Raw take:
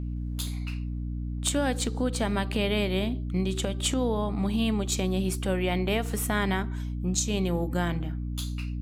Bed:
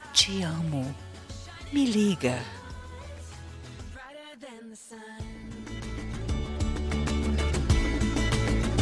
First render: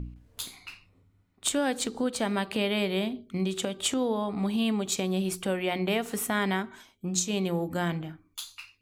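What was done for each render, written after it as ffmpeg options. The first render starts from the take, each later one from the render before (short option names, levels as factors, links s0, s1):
-af "bandreject=f=60:t=h:w=4,bandreject=f=120:t=h:w=4,bandreject=f=180:t=h:w=4,bandreject=f=240:t=h:w=4,bandreject=f=300:t=h:w=4,bandreject=f=360:t=h:w=4,bandreject=f=420:t=h:w=4"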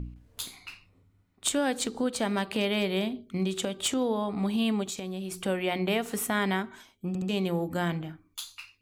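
-filter_complex "[0:a]asettb=1/sr,asplit=3[s0][s1][s2];[s0]atrim=end=2.224[s3];[s1]atrim=start=2.22:end=4.08,asetpts=PTS-STARTPTS,afade=t=in:d=0.004:c=qsin,afade=t=out:st=1.856:d=0.004:c=qsin,volume=10,asoftclip=hard,volume=0.1[s4];[s2]atrim=start=4.076[s5];[s3][s4]acrossfade=d=0.004:c1=hsin:c2=qsin[s6];[s6][s5]acrossfade=d=0.004:c1=qsin:c2=hsin,asplit=3[s7][s8][s9];[s7]afade=t=out:st=4.83:d=0.02[s10];[s8]acompressor=threshold=0.0251:ratio=6:attack=3.2:release=140:knee=1:detection=peak,afade=t=in:st=4.83:d=0.02,afade=t=out:st=5.4:d=0.02[s11];[s9]afade=t=in:st=5.4:d=0.02[s12];[s10][s11][s12]amix=inputs=3:normalize=0,asplit=4[s13][s14][s15][s16];[s13]atrim=end=7.152[s17];[s14]atrim=start=7.078:end=7.152[s18];[s15]atrim=start=7.078:end=7.152[s19];[s16]atrim=start=7.288[s20];[s17][s18]acrossfade=d=0.004:c1=hsin:c2=hsin[s21];[s21][s19]acrossfade=d=0.004:c1=hsin:c2=hsin[s22];[s22][s20]acrossfade=d=0.004:c1=hsin:c2=hsin"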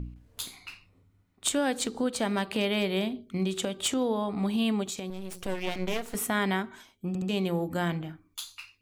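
-filter_complex "[0:a]asettb=1/sr,asplit=3[s0][s1][s2];[s0]atrim=end=5.104[s3];[s1]atrim=start=5.1:end=6.15,asetpts=PTS-STARTPTS,afade=t=in:d=0.004:c=qsin,afade=t=out:st=1.046:d=0.004:c=qsin,aeval=exprs='max(val(0),0)':c=same[s4];[s2]atrim=start=6.146[s5];[s3][s4]acrossfade=d=0.004:c1=hsin:c2=qsin[s6];[s6][s5]acrossfade=d=0.004:c1=qsin:c2=hsin"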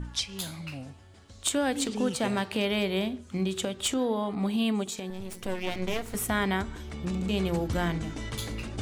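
-filter_complex "[1:a]volume=0.316[s0];[0:a][s0]amix=inputs=2:normalize=0"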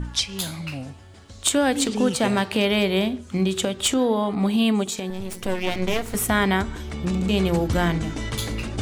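-af "volume=2.24"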